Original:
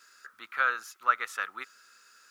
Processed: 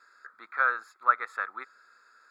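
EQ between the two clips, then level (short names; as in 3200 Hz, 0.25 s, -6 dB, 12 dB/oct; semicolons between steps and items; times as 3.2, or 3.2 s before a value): running mean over 15 samples; HPF 590 Hz 6 dB/oct; +6.0 dB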